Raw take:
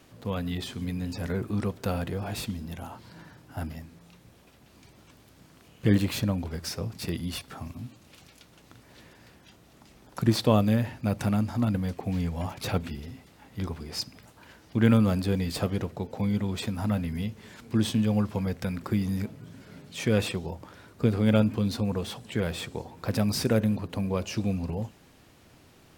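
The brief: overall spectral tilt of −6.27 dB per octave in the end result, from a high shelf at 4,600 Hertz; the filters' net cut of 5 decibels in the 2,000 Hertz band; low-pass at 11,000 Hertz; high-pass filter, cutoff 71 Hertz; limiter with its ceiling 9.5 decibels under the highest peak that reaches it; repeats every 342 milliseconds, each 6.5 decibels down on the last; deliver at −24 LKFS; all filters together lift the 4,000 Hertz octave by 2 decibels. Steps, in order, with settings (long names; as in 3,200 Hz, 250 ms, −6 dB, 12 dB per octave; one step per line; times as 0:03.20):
high-pass filter 71 Hz
low-pass filter 11,000 Hz
parametric band 2,000 Hz −8 dB
parametric band 4,000 Hz +8.5 dB
high-shelf EQ 4,600 Hz −7.5 dB
brickwall limiter −18 dBFS
repeating echo 342 ms, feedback 47%, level −6.5 dB
level +6.5 dB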